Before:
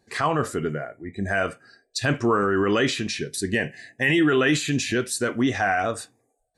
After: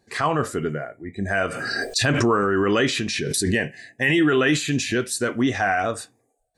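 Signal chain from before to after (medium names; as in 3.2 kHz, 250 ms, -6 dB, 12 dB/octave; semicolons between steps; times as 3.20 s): 1.34–3.66 s: swell ahead of each attack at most 22 dB/s; trim +1 dB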